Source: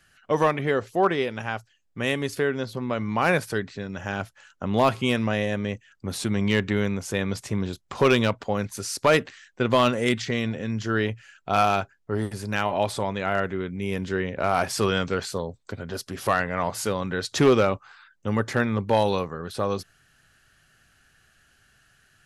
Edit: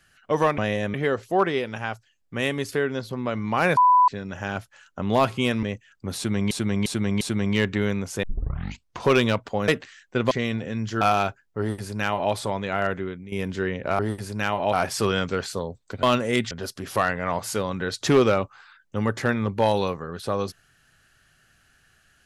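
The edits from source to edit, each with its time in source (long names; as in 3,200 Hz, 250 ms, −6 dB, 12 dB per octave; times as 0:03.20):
0:03.41–0:03.72: beep over 996 Hz −12.5 dBFS
0:05.27–0:05.63: move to 0:00.58
0:06.16–0:06.51: repeat, 4 plays
0:07.18: tape start 0.82 s
0:08.63–0:09.13: remove
0:09.76–0:10.24: move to 0:15.82
0:10.94–0:11.54: remove
0:12.12–0:12.86: duplicate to 0:14.52
0:13.52–0:13.85: fade out, to −13 dB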